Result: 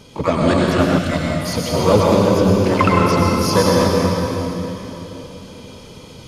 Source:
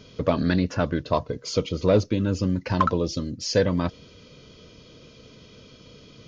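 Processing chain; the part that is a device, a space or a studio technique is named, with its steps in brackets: shimmer-style reverb (harmony voices +12 st -7 dB; reverberation RT60 3.5 s, pre-delay 91 ms, DRR -3.5 dB); 0.98–1.74 s: fifteen-band graphic EQ 100 Hz -5 dB, 400 Hz -10 dB, 1 kHz -12 dB; trim +3.5 dB

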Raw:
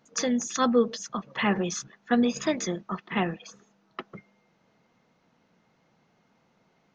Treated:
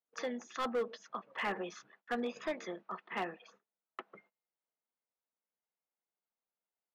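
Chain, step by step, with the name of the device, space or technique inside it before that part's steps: walkie-talkie (band-pass 420–2600 Hz; hard clipper -22.5 dBFS, distortion -11 dB; gate -58 dBFS, range -25 dB); trim -6.5 dB

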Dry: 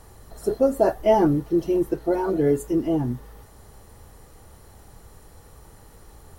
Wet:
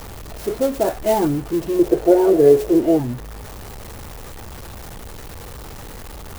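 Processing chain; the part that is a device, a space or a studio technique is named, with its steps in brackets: early CD player with a faulty converter (jump at every zero crossing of -29 dBFS; sampling jitter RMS 0.038 ms); 1.79–3.00 s: high-order bell 500 Hz +10.5 dB 1.3 oct; trim -1 dB

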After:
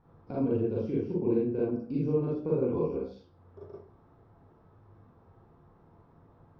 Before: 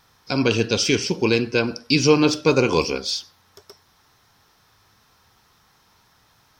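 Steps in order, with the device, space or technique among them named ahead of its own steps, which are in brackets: television next door (compression 3:1, threshold -36 dBFS, peak gain reduction 19 dB; low-pass 550 Hz 12 dB/octave; reverberation RT60 0.35 s, pre-delay 34 ms, DRR -6 dB)

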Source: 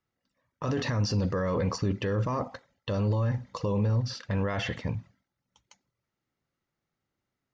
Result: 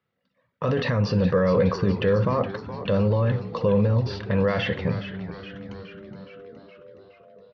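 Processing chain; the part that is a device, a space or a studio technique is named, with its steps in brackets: frequency-shifting delay pedal into a guitar cabinet (frequency-shifting echo 418 ms, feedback 64%, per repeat -100 Hz, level -11 dB; cabinet simulation 100–4000 Hz, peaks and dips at 180 Hz +4 dB, 310 Hz -8 dB, 500 Hz +6 dB, 840 Hz -4 dB); trim +6 dB

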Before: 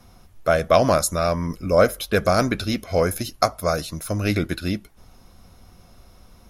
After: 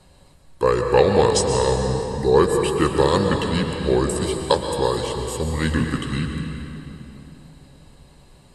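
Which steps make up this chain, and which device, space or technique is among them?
bass shelf 65 Hz -5.5 dB; slowed and reverbed (tape speed -24%; reverberation RT60 3.1 s, pre-delay 111 ms, DRR 3.5 dB)

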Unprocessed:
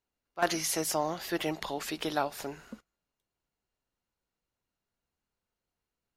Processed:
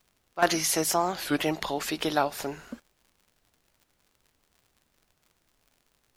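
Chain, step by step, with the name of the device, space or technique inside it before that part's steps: warped LP (warped record 33 1/3 rpm, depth 250 cents; crackle 75 per s -53 dBFS; pink noise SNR 41 dB); trim +5 dB

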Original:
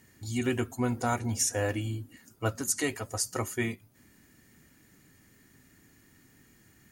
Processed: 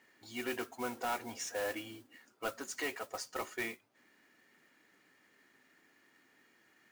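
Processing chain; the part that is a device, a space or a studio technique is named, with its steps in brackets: carbon microphone (band-pass 470–3500 Hz; saturation -28 dBFS, distortion -12 dB; modulation noise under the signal 13 dB); trim -1 dB

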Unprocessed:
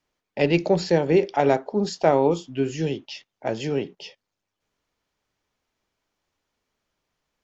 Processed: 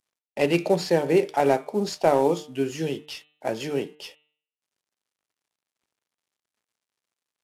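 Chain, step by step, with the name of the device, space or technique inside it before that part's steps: early wireless headset (high-pass 200 Hz 6 dB/octave; CVSD coder 64 kbps); de-hum 150.7 Hz, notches 27

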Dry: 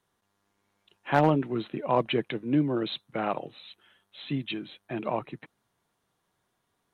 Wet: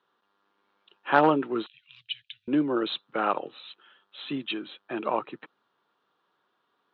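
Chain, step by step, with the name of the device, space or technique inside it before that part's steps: phone earpiece (cabinet simulation 340–3900 Hz, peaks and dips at 670 Hz -6 dB, 1.3 kHz +5 dB, 2.1 kHz -8 dB); 1.66–2.48 s: inverse Chebyshev band-stop 250–910 Hz, stop band 70 dB; trim +5 dB

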